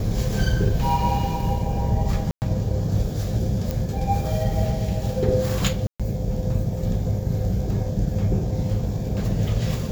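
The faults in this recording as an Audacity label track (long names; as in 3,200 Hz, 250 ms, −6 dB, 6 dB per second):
2.310000	2.420000	drop-out 109 ms
3.710000	3.710000	click
5.870000	6.000000	drop-out 126 ms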